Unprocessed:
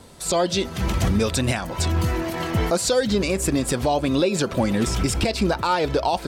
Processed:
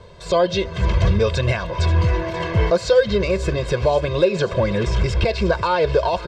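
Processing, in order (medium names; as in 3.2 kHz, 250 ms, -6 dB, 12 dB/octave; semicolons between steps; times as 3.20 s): distance through air 180 m; comb 1.9 ms, depth 96%; on a send: feedback echo behind a high-pass 535 ms, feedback 72%, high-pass 1.4 kHz, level -13.5 dB; on the sum: trim +1 dB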